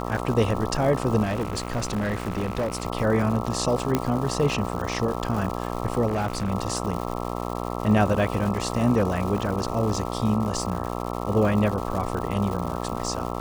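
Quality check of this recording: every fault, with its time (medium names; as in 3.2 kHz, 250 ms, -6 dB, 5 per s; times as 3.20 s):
buzz 60 Hz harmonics 22 -30 dBFS
crackle 310 per s -31 dBFS
1.23–2.85 s: clipped -22 dBFS
3.95 s: pop -8 dBFS
6.07–6.51 s: clipped -21 dBFS
9.38 s: dropout 2 ms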